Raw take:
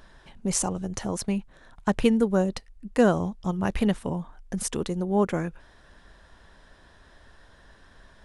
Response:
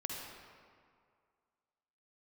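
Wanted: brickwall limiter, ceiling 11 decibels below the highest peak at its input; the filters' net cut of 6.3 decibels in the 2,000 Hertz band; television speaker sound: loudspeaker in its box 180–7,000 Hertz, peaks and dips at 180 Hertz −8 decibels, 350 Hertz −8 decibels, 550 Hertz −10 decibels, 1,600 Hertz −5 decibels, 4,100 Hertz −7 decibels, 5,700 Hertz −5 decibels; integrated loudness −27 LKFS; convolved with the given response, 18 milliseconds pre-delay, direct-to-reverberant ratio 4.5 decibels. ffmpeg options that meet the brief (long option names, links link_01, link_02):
-filter_complex "[0:a]equalizer=frequency=2000:width_type=o:gain=-4.5,alimiter=limit=-19dB:level=0:latency=1,asplit=2[link_01][link_02];[1:a]atrim=start_sample=2205,adelay=18[link_03];[link_02][link_03]afir=irnorm=-1:irlink=0,volume=-5.5dB[link_04];[link_01][link_04]amix=inputs=2:normalize=0,highpass=frequency=180:width=0.5412,highpass=frequency=180:width=1.3066,equalizer=frequency=180:width_type=q:width=4:gain=-8,equalizer=frequency=350:width_type=q:width=4:gain=-8,equalizer=frequency=550:width_type=q:width=4:gain=-10,equalizer=frequency=1600:width_type=q:width=4:gain=-5,equalizer=frequency=4100:width_type=q:width=4:gain=-7,equalizer=frequency=5700:width_type=q:width=4:gain=-5,lowpass=frequency=7000:width=0.5412,lowpass=frequency=7000:width=1.3066,volume=9dB"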